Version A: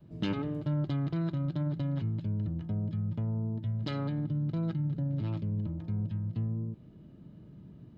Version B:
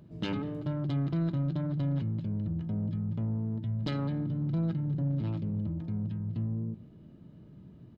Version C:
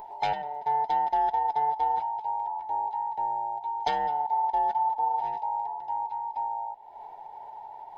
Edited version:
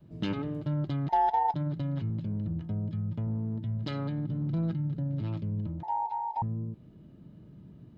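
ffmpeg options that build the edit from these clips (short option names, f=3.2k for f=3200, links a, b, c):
-filter_complex "[2:a]asplit=2[a][b];[1:a]asplit=3[c][d][e];[0:a]asplit=6[f][g][h][i][j][k];[f]atrim=end=1.092[l];[a]atrim=start=1.088:end=1.542[m];[g]atrim=start=1.538:end=2.102[n];[c]atrim=start=2.098:end=2.592[o];[h]atrim=start=2.588:end=3.272[p];[d]atrim=start=3.268:end=3.782[q];[i]atrim=start=3.778:end=4.292[r];[e]atrim=start=4.288:end=4.752[s];[j]atrim=start=4.748:end=5.832[t];[b]atrim=start=5.828:end=6.422[u];[k]atrim=start=6.418[v];[l][m]acrossfade=d=0.004:c1=hsin:c2=hsin[w];[w][n]acrossfade=d=0.004:c1=hsin:c2=hsin[x];[x][o]acrossfade=d=0.004:c1=hsin:c2=hsin[y];[y][p]acrossfade=d=0.004:c1=hsin:c2=hsin[z];[z][q]acrossfade=d=0.004:c1=hsin:c2=hsin[aa];[aa][r]acrossfade=d=0.004:c1=hsin:c2=hsin[ab];[ab][s]acrossfade=d=0.004:c1=hsin:c2=hsin[ac];[ac][t]acrossfade=d=0.004:c1=hsin:c2=hsin[ad];[ad][u]acrossfade=d=0.004:c1=hsin:c2=hsin[ae];[ae][v]acrossfade=d=0.004:c1=hsin:c2=hsin"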